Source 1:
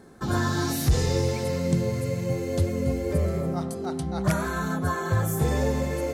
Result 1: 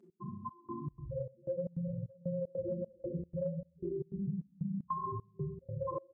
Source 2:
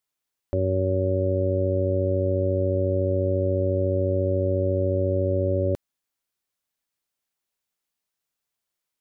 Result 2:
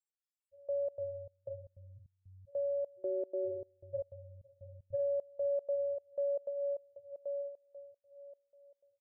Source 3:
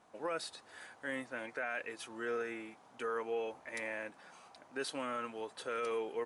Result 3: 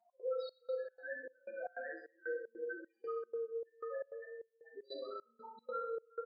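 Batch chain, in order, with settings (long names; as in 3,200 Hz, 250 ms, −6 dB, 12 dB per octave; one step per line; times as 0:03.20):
feedback delay that plays each chunk backwards 495 ms, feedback 43%, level −2.5 dB
spectral peaks only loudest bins 2
high-pass filter 700 Hz 6 dB per octave
high-shelf EQ 3,600 Hz −10.5 dB
comb filter 5.8 ms, depth 96%
repeating echo 64 ms, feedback 60%, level −9 dB
four-comb reverb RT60 0.3 s, combs from 27 ms, DRR 1 dB
downward compressor 5 to 1, threshold −35 dBFS
gate pattern "x.xxx..x" 153 BPM −24 dB
parametric band 8,100 Hz +13.5 dB 0.96 octaves
level +2 dB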